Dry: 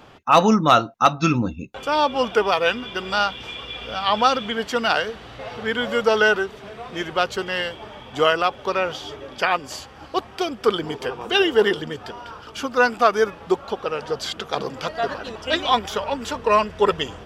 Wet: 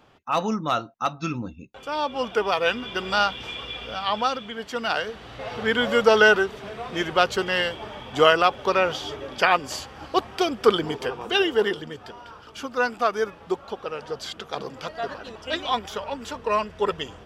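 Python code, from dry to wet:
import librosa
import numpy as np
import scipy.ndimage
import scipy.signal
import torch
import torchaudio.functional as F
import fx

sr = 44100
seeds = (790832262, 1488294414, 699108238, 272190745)

y = fx.gain(x, sr, db=fx.line((1.67, -9.5), (2.95, -0.5), (3.67, -0.5), (4.51, -9.0), (5.61, 1.5), (10.69, 1.5), (11.83, -6.0)))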